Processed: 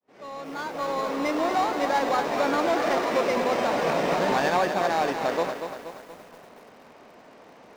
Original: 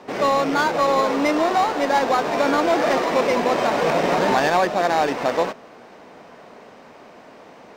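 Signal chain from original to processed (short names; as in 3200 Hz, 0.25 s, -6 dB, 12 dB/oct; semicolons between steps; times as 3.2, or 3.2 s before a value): opening faded in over 1.57 s; lo-fi delay 0.237 s, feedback 55%, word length 7-bit, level -7.5 dB; gain -5.5 dB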